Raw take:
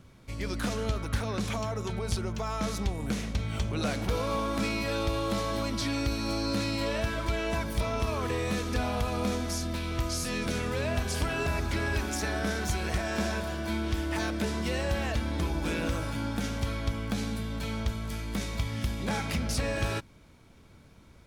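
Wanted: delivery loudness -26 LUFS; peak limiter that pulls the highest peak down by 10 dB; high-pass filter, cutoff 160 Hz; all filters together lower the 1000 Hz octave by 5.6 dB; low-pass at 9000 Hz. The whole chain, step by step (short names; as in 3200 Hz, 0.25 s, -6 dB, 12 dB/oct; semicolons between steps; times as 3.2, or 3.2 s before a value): HPF 160 Hz; LPF 9000 Hz; bell 1000 Hz -7.5 dB; gain +11 dB; limiter -17 dBFS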